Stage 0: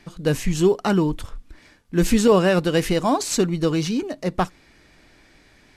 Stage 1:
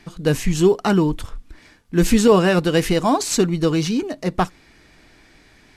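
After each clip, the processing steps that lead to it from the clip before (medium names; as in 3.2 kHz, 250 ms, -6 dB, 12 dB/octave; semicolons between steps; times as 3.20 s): band-stop 560 Hz, Q 12; trim +2.5 dB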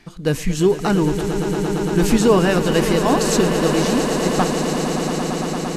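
echo with a slow build-up 114 ms, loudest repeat 8, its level -11 dB; trim -1 dB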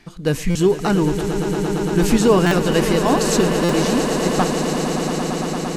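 buffer glitch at 0.50/2.46/3.64 s, samples 256, times 8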